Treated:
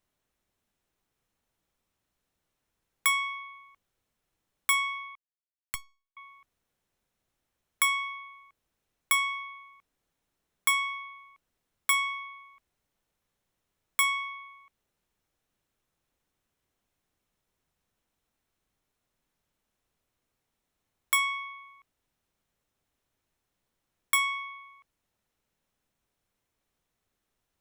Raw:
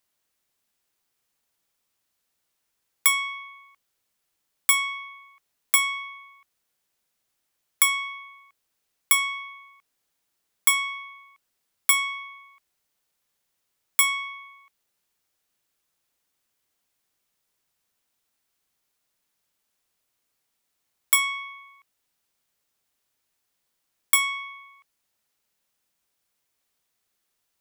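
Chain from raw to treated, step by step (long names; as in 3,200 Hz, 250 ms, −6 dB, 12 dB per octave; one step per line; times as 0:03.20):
0:05.15–0:06.17: power curve on the samples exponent 3
spectral tilt −2.5 dB per octave
notch filter 4,700 Hz, Q 14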